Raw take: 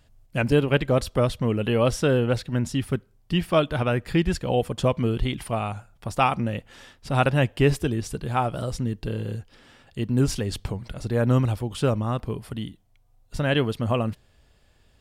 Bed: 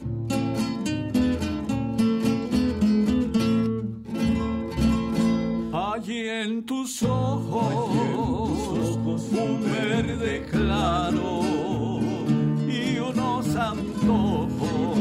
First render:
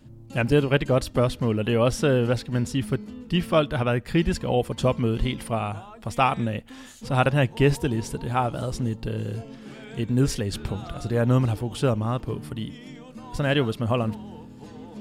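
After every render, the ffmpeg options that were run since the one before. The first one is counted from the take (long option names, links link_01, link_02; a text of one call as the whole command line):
ffmpeg -i in.wav -i bed.wav -filter_complex "[1:a]volume=-17dB[link_01];[0:a][link_01]amix=inputs=2:normalize=0" out.wav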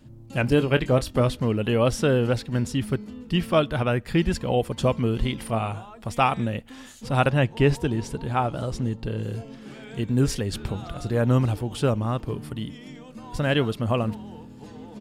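ffmpeg -i in.wav -filter_complex "[0:a]asplit=3[link_01][link_02][link_03];[link_01]afade=type=out:start_time=0.43:duration=0.02[link_04];[link_02]asplit=2[link_05][link_06];[link_06]adelay=24,volume=-12dB[link_07];[link_05][link_07]amix=inputs=2:normalize=0,afade=type=in:start_time=0.43:duration=0.02,afade=type=out:start_time=1.35:duration=0.02[link_08];[link_03]afade=type=in:start_time=1.35:duration=0.02[link_09];[link_04][link_08][link_09]amix=inputs=3:normalize=0,asettb=1/sr,asplit=3[link_10][link_11][link_12];[link_10]atrim=end=5.404[link_13];[link_11]atrim=start=5.4:end=5.85,asetpts=PTS-STARTPTS,afade=type=in:duration=0.004:curve=qsin,afade=type=out:start_time=0.446:duration=0.004:curve=qsin,asplit=2[link_14][link_15];[link_15]adelay=27,volume=-10.5dB[link_16];[link_14][link_16]amix=inputs=2:normalize=0,atrim=end_sample=19845[link_17];[link_12]atrim=start=5.846[link_18];[link_13][link_17]acrossfade=duration=0.004:curve1=hsin:curve2=qsin[link_19];[link_19][link_18]acrossfade=duration=0.004:curve1=qsin:curve2=hsin,asettb=1/sr,asplit=3[link_20][link_21][link_22];[link_20]atrim=end=7.304[link_23];[link_21]atrim=start=7.3:end=9.23,asetpts=PTS-STARTPTS,afade=type=in:duration=0.004:curve=qsin,afade=type=out:start_time=1.926:duration=0.004:curve=qsin,highshelf=frequency=8900:gain=-9[link_24];[link_22]atrim=start=9.226[link_25];[link_23][link_24]acrossfade=duration=0.004:curve1=hsin:curve2=qsin[link_26];[link_26][link_25]acrossfade=duration=0.004:curve1=qsin:curve2=hsin" out.wav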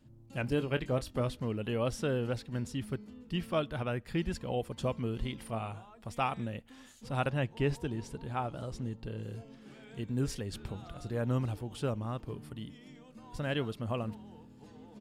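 ffmpeg -i in.wav -af "volume=-11dB" out.wav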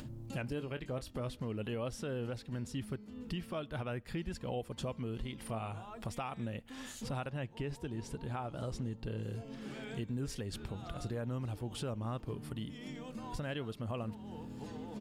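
ffmpeg -i in.wav -af "acompressor=mode=upward:threshold=-35dB:ratio=2.5,alimiter=level_in=5dB:limit=-24dB:level=0:latency=1:release=249,volume=-5dB" out.wav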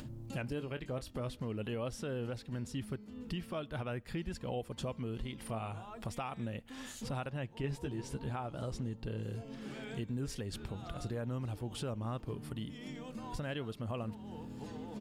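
ffmpeg -i in.wav -filter_complex "[0:a]asettb=1/sr,asplit=3[link_01][link_02][link_03];[link_01]atrim=end=7.624[link_04];[link_02]atrim=start=7.62:end=8.3,asetpts=PTS-STARTPTS,afade=type=in:duration=0.004:curve=qsin,afade=type=out:start_time=0.676:duration=0.004:curve=qsin,asplit=2[link_05][link_06];[link_06]adelay=15,volume=-3dB[link_07];[link_05][link_07]amix=inputs=2:normalize=0,atrim=end_sample=29988[link_08];[link_03]atrim=start=8.296[link_09];[link_04][link_08]acrossfade=duration=0.004:curve1=hsin:curve2=qsin[link_10];[link_10][link_09]acrossfade=duration=0.004:curve1=qsin:curve2=hsin" out.wav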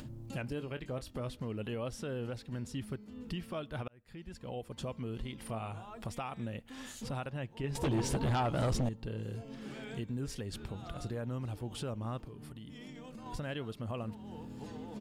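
ffmpeg -i in.wav -filter_complex "[0:a]asettb=1/sr,asplit=3[link_01][link_02][link_03];[link_01]atrim=end=7.754[link_04];[link_02]atrim=start=7.75:end=8.89,asetpts=PTS-STARTPTS,afade=type=in:duration=0.004:curve=qsin,afade=type=out:start_time=1.136:duration=0.004:curve=qsin,aeval=exprs='0.0473*sin(PI/2*2.51*val(0)/0.0473)':channel_layout=same[link_05];[link_03]atrim=start=8.886[link_06];[link_04][link_05]acrossfade=duration=0.004:curve1=hsin:curve2=qsin[link_07];[link_07][link_06]acrossfade=duration=0.004:curve1=qsin:curve2=hsin,asettb=1/sr,asplit=3[link_08][link_09][link_10];[link_08]atrim=end=12.254[link_11];[link_09]atrim=start=12.25:end=13.26,asetpts=PTS-STARTPTS,afade=type=in:duration=0.004:curve=qsin,afade=type=out:start_time=1.006:duration=0.004:curve=qsin,acompressor=threshold=-44dB:ratio=6:attack=3.2:release=140:knee=1:detection=peak[link_12];[link_10]atrim=start=13.256[link_13];[link_11][link_12]acrossfade=duration=0.004:curve1=hsin:curve2=qsin[link_14];[link_14][link_13]acrossfade=duration=0.004:curve1=qsin:curve2=hsin,asplit=2[link_15][link_16];[link_15]atrim=end=3.88,asetpts=PTS-STARTPTS,afade=type=out:start_time=3.876:duration=0.004:curve=hsin[link_17];[link_16]atrim=start=3.88,asetpts=PTS-STARTPTS,afade=type=in:duration=1.36:curve=qsin[link_18];[link_17][link_18]concat=n=2:v=0:a=1" out.wav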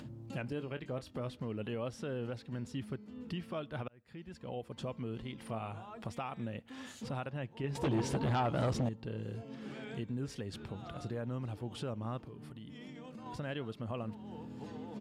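ffmpeg -i in.wav -af "highpass=93,highshelf=frequency=7000:gain=-11.5" out.wav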